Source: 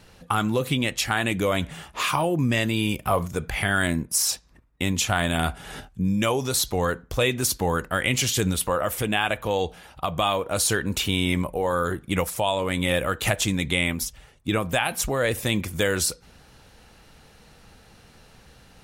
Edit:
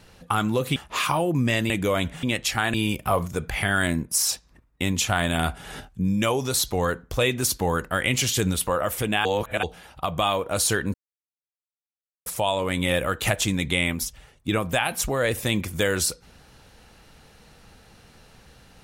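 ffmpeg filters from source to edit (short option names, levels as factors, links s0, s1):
-filter_complex "[0:a]asplit=9[s0][s1][s2][s3][s4][s5][s6][s7][s8];[s0]atrim=end=0.762[s9];[s1]atrim=start=1.798:end=2.742[s10];[s2]atrim=start=1.268:end=1.802[s11];[s3]atrim=start=0.758:end=1.272[s12];[s4]atrim=start=2.738:end=9.252[s13];[s5]atrim=start=9.248:end=9.632,asetpts=PTS-STARTPTS,areverse[s14];[s6]atrim=start=9.628:end=10.94,asetpts=PTS-STARTPTS,afade=t=out:st=1.308:d=0.004:c=hsin[s15];[s7]atrim=start=10.94:end=12.26,asetpts=PTS-STARTPTS,volume=0[s16];[s8]atrim=start=12.26,asetpts=PTS-STARTPTS,afade=t=in:d=0.004:c=hsin[s17];[s9][s10]acrossfade=d=0.004:c1=hsin:c2=hsin[s18];[s18][s11]acrossfade=d=0.004:c1=hsin:c2=hsin[s19];[s19][s12]acrossfade=d=0.004:c1=hsin:c2=hsin[s20];[s20][s13]acrossfade=d=0.004:c1=hsin:c2=hsin[s21];[s21][s14]acrossfade=d=0.004:c1=hsin:c2=hsin[s22];[s15][s16][s17]concat=n=3:v=0:a=1[s23];[s22][s23]acrossfade=d=0.004:c1=hsin:c2=hsin"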